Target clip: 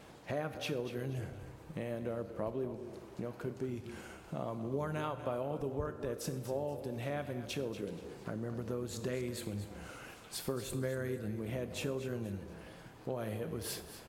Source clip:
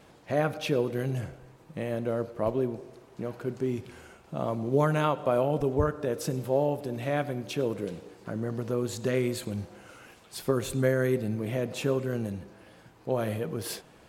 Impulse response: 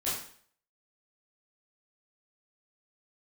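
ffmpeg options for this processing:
-filter_complex "[0:a]acompressor=threshold=-40dB:ratio=2.5,asplit=4[link_01][link_02][link_03][link_04];[link_02]adelay=239,afreqshift=-32,volume=-12dB[link_05];[link_03]adelay=478,afreqshift=-64,volume=-22.2dB[link_06];[link_04]adelay=717,afreqshift=-96,volume=-32.3dB[link_07];[link_01][link_05][link_06][link_07]amix=inputs=4:normalize=0,asplit=2[link_08][link_09];[1:a]atrim=start_sample=2205,highshelf=frequency=7900:gain=10.5[link_10];[link_09][link_10]afir=irnorm=-1:irlink=0,volume=-20.5dB[link_11];[link_08][link_11]amix=inputs=2:normalize=0"

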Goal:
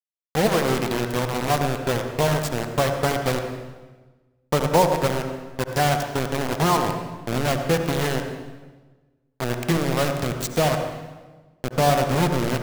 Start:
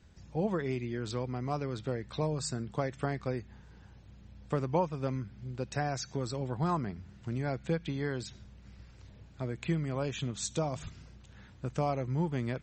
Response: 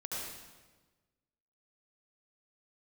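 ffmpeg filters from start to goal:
-filter_complex "[0:a]equalizer=frequency=740:width_type=o:width=1.4:gain=5.5,acrusher=bits=4:mix=0:aa=0.000001,asplit=2[link_01][link_02];[1:a]atrim=start_sample=2205,highshelf=frequency=3800:gain=-8.5[link_03];[link_02][link_03]afir=irnorm=-1:irlink=0,volume=-3.5dB[link_04];[link_01][link_04]amix=inputs=2:normalize=0,volume=5dB"

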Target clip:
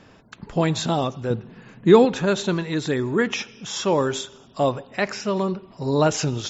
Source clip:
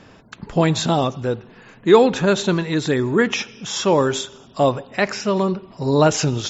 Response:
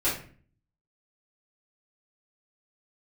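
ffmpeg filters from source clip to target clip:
-filter_complex "[0:a]asettb=1/sr,asplit=3[link_01][link_02][link_03];[link_01]atrim=end=1.304[link_04];[link_02]atrim=start=1.3:end=2.05,asetpts=PTS-STARTPTS,afade=type=in:duration=0.004:curve=qsin,afade=type=out:start_time=0.746:duration=0.004:curve=qsin,equalizer=frequency=160:width_type=o:width=1.7:gain=10[link_05];[link_03]atrim=start=2.046[link_06];[link_04][link_05]acrossfade=duration=0.004:curve1=hsin:curve2=qsin[link_07];[link_07][link_06]acrossfade=duration=0.004:curve1=qsin:curve2=hsin,volume=-4dB"

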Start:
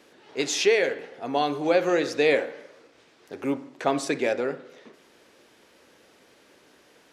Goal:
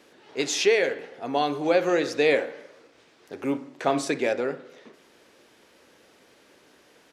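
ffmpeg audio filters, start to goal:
ffmpeg -i in.wav -filter_complex "[0:a]asplit=3[link_01][link_02][link_03];[link_01]afade=type=out:start_time=3.53:duration=0.02[link_04];[link_02]asplit=2[link_05][link_06];[link_06]adelay=35,volume=-10dB[link_07];[link_05][link_07]amix=inputs=2:normalize=0,afade=type=in:start_time=3.53:duration=0.02,afade=type=out:start_time=4.09:duration=0.02[link_08];[link_03]afade=type=in:start_time=4.09:duration=0.02[link_09];[link_04][link_08][link_09]amix=inputs=3:normalize=0" out.wav

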